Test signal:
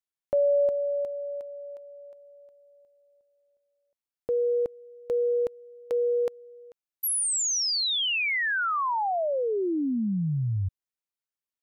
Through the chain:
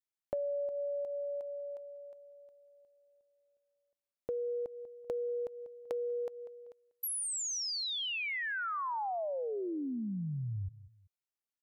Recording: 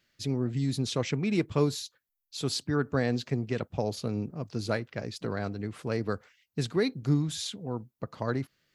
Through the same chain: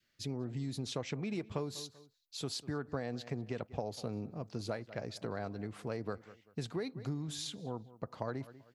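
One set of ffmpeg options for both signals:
ffmpeg -i in.wav -filter_complex "[0:a]adynamicequalizer=threshold=0.00708:dfrequency=730:dqfactor=1.2:tfrequency=730:tqfactor=1.2:attack=5:release=100:ratio=0.375:range=3:mode=boostabove:tftype=bell,asplit=2[link_01][link_02];[link_02]adelay=193,lowpass=frequency=4500:poles=1,volume=-21.5dB,asplit=2[link_03][link_04];[link_04]adelay=193,lowpass=frequency=4500:poles=1,volume=0.31[link_05];[link_01][link_03][link_05]amix=inputs=3:normalize=0,acompressor=threshold=-30dB:ratio=6:attack=18:release=280:knee=6:detection=peak,volume=-5dB" out.wav

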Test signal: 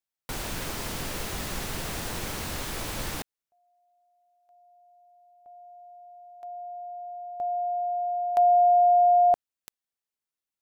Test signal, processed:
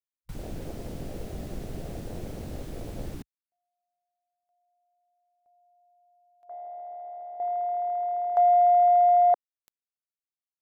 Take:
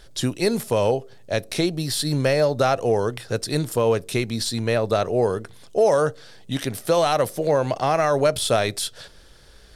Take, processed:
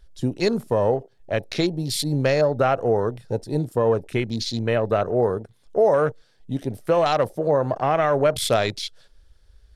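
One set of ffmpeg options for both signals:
ffmpeg -i in.wav -af "afwtdn=0.0251" out.wav

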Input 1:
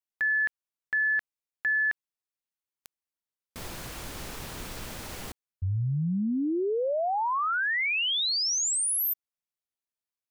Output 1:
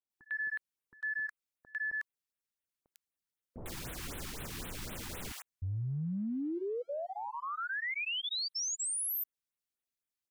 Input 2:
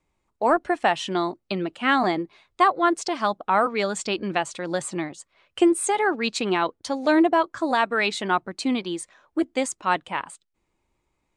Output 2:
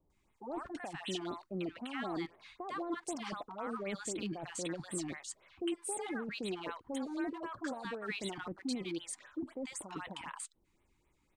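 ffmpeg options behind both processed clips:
ffmpeg -i in.wav -filter_complex "[0:a]alimiter=limit=-17dB:level=0:latency=1:release=22,areverse,acompressor=threshold=-34dB:ratio=5:attack=0.12:release=41:knee=1:detection=rms,areverse,acrossover=split=880[link_01][link_02];[link_02]adelay=100[link_03];[link_01][link_03]amix=inputs=2:normalize=0,afftfilt=real='re*(1-between(b*sr/1024,480*pow(6000/480,0.5+0.5*sin(2*PI*3.9*pts/sr))/1.41,480*pow(6000/480,0.5+0.5*sin(2*PI*3.9*pts/sr))*1.41))':imag='im*(1-between(b*sr/1024,480*pow(6000/480,0.5+0.5*sin(2*PI*3.9*pts/sr))/1.41,480*pow(6000/480,0.5+0.5*sin(2*PI*3.9*pts/sr))*1.41))':win_size=1024:overlap=0.75" out.wav

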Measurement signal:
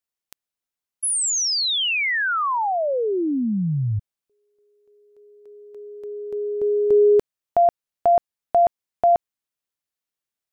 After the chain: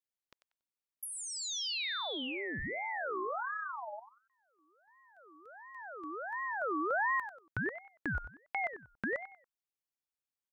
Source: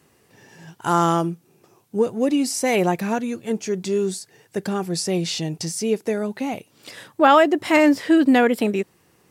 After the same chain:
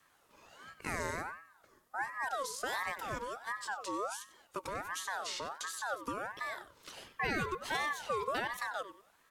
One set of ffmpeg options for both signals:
ffmpeg -i in.wav -filter_complex "[0:a]acrossover=split=260|4000[link_01][link_02][link_03];[link_01]acompressor=threshold=-34dB:ratio=8[link_04];[link_02]acompressor=threshold=-33dB:ratio=2[link_05];[link_03]acompressor=threshold=-32dB:ratio=8[link_06];[link_04][link_05][link_06]amix=inputs=3:normalize=0,asplit=2[link_07][link_08];[link_08]adelay=94,lowpass=frequency=3900:poles=1,volume=-11.5dB,asplit=2[link_09][link_10];[link_10]adelay=94,lowpass=frequency=3900:poles=1,volume=0.3,asplit=2[link_11][link_12];[link_12]adelay=94,lowpass=frequency=3900:poles=1,volume=0.3[link_13];[link_09][link_11][link_13]amix=inputs=3:normalize=0[link_14];[link_07][link_14]amix=inputs=2:normalize=0,aeval=exprs='val(0)*sin(2*PI*1100*n/s+1100*0.35/1.4*sin(2*PI*1.4*n/s))':channel_layout=same,volume=-7dB" out.wav

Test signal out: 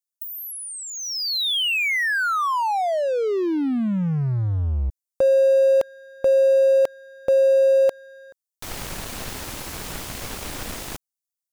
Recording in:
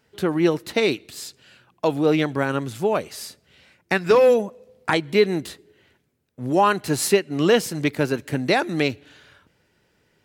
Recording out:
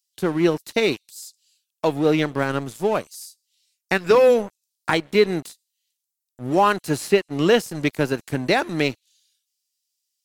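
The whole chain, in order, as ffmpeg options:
ffmpeg -i in.wav -filter_complex "[0:a]acrossover=split=4800[link_01][link_02];[link_01]aeval=exprs='sgn(val(0))*max(abs(val(0))-0.015,0)':channel_layout=same[link_03];[link_02]acompressor=threshold=-35dB:ratio=6[link_04];[link_03][link_04]amix=inputs=2:normalize=0,volume=1dB" out.wav

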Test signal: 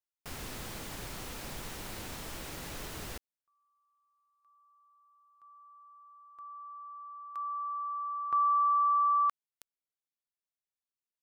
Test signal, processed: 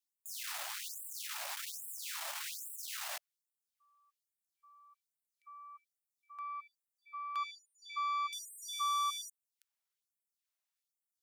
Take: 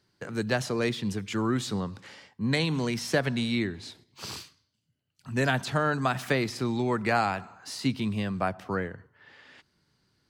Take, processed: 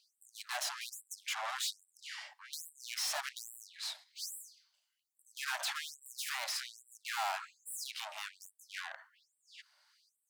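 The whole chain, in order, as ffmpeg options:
ffmpeg -i in.wav -af "aeval=exprs='(tanh(89.1*val(0)+0.55)-tanh(0.55))/89.1':channel_layout=same,afftfilt=real='re*gte(b*sr/1024,550*pow(7600/550,0.5+0.5*sin(2*PI*1.2*pts/sr)))':imag='im*gte(b*sr/1024,550*pow(7600/550,0.5+0.5*sin(2*PI*1.2*pts/sr)))':win_size=1024:overlap=0.75,volume=7dB" out.wav

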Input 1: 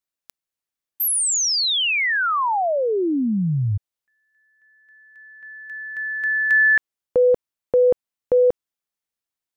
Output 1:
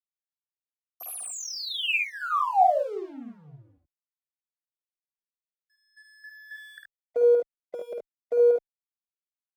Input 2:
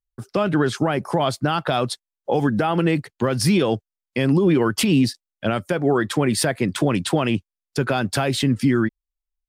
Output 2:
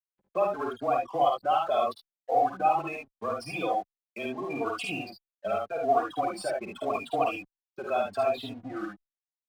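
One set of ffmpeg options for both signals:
ffmpeg -i in.wav -filter_complex "[0:a]afftfilt=real='re*gte(hypot(re,im),0.1)':imag='im*gte(hypot(re,im),0.1)':win_size=1024:overlap=0.75,aemphasis=mode=production:type=50fm,acompressor=mode=upward:threshold=-36dB:ratio=2.5:attack=0.61:release=32:knee=2.83:detection=peak,afreqshift=-19,aeval=exprs='0.75*(cos(1*acos(clip(val(0)/0.75,-1,1)))-cos(1*PI/2))+0.015*(cos(4*acos(clip(val(0)/0.75,-1,1)))-cos(4*PI/2))+0.0119*(cos(5*acos(clip(val(0)/0.75,-1,1)))-cos(5*PI/2))+0.0237*(cos(7*acos(clip(val(0)/0.75,-1,1)))-cos(7*PI/2))':channel_layout=same,asplit=3[link_01][link_02][link_03];[link_01]bandpass=frequency=730:width_type=q:width=8,volume=0dB[link_04];[link_02]bandpass=frequency=1090:width_type=q:width=8,volume=-6dB[link_05];[link_03]bandpass=frequency=2440:width_type=q:width=8,volume=-9dB[link_06];[link_04][link_05][link_06]amix=inputs=3:normalize=0,aeval=exprs='sgn(val(0))*max(abs(val(0))-0.00141,0)':channel_layout=same,aecho=1:1:52|73:0.631|0.631,asplit=2[link_07][link_08];[link_08]adelay=3.6,afreqshift=0.8[link_09];[link_07][link_09]amix=inputs=2:normalize=1,volume=7dB" out.wav

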